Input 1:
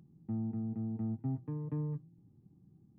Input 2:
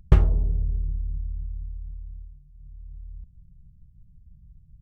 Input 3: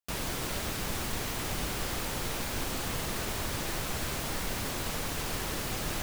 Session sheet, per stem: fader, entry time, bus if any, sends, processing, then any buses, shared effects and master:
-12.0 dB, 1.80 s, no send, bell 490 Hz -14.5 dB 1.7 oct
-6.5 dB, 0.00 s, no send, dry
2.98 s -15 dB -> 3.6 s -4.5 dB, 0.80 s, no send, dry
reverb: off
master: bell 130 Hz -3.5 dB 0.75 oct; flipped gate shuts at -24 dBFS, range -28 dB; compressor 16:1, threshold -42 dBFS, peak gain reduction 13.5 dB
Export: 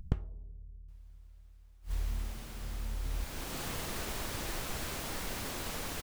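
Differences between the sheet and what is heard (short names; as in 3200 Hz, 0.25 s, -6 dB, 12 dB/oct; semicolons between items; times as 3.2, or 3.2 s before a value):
stem 2 -6.5 dB -> +4.0 dB; master: missing compressor 16:1, threshold -42 dBFS, peak gain reduction 13.5 dB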